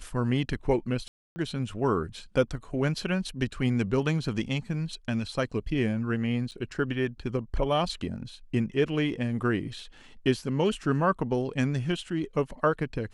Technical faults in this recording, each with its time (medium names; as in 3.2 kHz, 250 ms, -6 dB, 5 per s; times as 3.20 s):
1.08–1.36 s: dropout 280 ms
6.51–6.52 s: dropout 7.6 ms